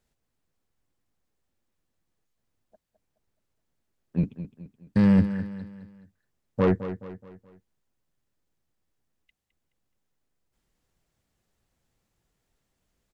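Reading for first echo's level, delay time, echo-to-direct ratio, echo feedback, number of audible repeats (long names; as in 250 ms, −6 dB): −12.0 dB, 212 ms, −11.0 dB, 43%, 4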